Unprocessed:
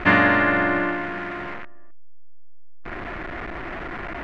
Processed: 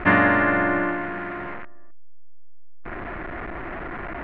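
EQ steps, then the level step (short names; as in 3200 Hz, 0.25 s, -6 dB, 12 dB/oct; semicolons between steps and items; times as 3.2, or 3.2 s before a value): LPF 2200 Hz 12 dB/oct; 0.0 dB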